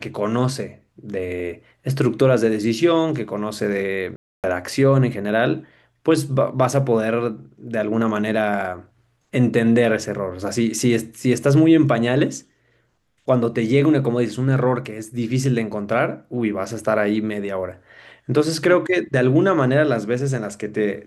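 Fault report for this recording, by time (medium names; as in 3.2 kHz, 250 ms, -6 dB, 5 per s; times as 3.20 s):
4.16–4.44 s: dropout 278 ms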